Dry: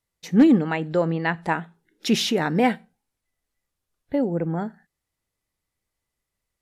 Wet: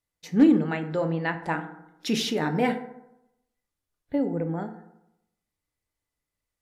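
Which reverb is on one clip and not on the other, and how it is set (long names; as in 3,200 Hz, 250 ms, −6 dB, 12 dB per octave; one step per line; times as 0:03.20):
feedback delay network reverb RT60 0.85 s, low-frequency decay 1×, high-frequency decay 0.45×, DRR 6.5 dB
level −5 dB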